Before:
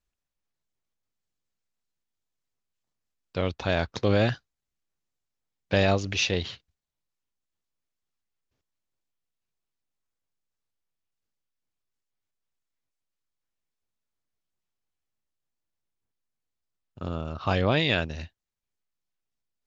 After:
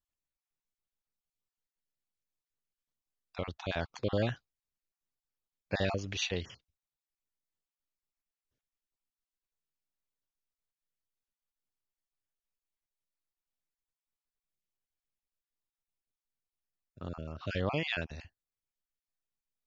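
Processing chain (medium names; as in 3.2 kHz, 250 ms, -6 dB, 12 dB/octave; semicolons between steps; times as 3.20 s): random holes in the spectrogram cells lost 24%; trim -7.5 dB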